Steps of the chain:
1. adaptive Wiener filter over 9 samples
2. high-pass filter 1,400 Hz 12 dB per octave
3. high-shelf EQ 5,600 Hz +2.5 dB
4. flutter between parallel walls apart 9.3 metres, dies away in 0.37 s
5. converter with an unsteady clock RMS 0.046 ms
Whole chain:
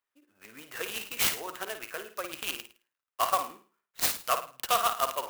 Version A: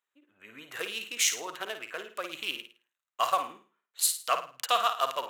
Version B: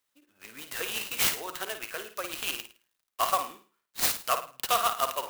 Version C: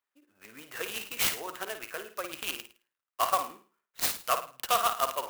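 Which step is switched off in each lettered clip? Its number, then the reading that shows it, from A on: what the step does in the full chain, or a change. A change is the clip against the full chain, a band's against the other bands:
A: 5, 8 kHz band +3.0 dB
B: 1, change in momentary loudness spread +2 LU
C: 3, change in crest factor −1.5 dB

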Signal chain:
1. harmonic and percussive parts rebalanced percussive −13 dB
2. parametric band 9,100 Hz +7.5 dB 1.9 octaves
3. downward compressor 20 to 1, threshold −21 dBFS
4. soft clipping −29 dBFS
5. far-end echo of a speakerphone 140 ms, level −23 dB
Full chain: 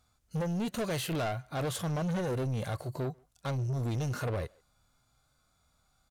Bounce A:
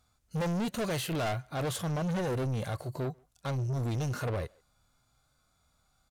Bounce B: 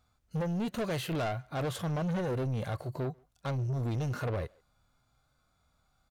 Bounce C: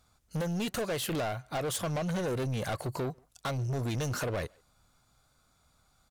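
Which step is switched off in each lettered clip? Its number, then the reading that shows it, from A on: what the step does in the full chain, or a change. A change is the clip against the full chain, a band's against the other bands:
3, average gain reduction 2.0 dB
2, 8 kHz band −6.0 dB
1, 125 Hz band −3.5 dB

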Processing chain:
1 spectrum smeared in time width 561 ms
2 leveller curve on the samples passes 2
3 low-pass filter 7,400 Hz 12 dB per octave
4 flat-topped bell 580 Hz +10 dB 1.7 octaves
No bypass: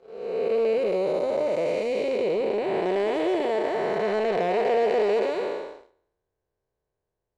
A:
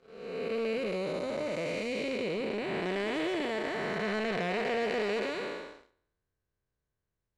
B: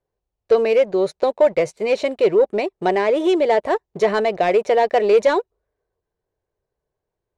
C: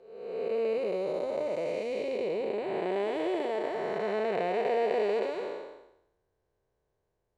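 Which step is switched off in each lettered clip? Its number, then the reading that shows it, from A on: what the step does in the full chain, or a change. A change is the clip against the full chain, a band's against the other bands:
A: 4, change in integrated loudness −8.0 LU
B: 1, 125 Hz band −1.5 dB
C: 2, change in crest factor +4.0 dB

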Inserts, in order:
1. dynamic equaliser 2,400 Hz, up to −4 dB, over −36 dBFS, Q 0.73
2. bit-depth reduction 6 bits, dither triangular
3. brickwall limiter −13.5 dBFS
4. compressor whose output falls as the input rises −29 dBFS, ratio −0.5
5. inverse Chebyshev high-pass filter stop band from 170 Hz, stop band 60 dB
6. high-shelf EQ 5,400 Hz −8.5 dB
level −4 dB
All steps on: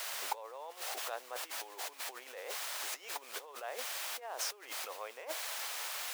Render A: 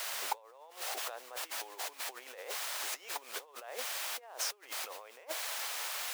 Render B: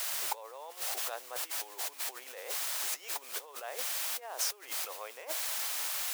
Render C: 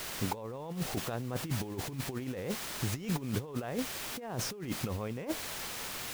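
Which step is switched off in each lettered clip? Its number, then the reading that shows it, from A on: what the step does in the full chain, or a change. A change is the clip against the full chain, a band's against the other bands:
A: 3, change in momentary loudness spread +2 LU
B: 6, 8 kHz band +5.0 dB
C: 5, 250 Hz band +28.0 dB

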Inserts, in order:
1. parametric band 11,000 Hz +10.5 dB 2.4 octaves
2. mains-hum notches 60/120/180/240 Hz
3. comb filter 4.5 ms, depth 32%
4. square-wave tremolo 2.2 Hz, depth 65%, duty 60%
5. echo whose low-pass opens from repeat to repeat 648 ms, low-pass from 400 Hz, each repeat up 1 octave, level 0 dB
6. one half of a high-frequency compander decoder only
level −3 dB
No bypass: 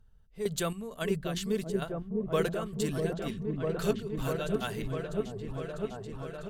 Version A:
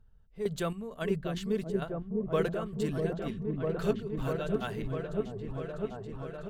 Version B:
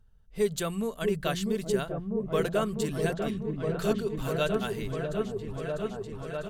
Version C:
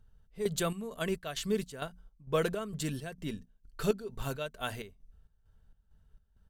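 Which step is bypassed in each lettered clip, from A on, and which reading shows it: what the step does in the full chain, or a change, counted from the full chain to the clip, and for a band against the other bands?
1, 8 kHz band −9.0 dB
4, change in momentary loudness spread −1 LU
5, change in momentary loudness spread +7 LU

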